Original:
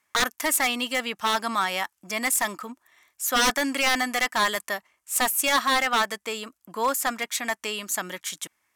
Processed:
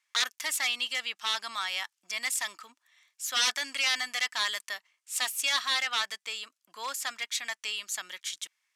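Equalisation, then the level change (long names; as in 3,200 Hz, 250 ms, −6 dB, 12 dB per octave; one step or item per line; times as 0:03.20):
resonant band-pass 4,000 Hz, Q 1
0.0 dB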